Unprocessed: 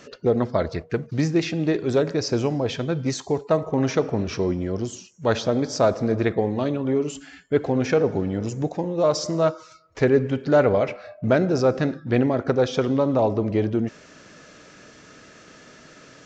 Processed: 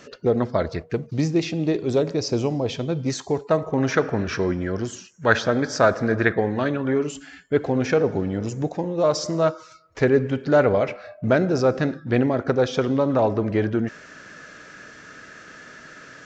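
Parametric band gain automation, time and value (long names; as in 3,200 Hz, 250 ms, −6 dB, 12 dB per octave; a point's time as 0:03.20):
parametric band 1,600 Hz 0.67 octaves
+1.5 dB
from 0:00.93 −7.5 dB
from 0:03.10 +3.5 dB
from 0:03.92 +14 dB
from 0:07.07 +2.5 dB
from 0:13.10 +10.5 dB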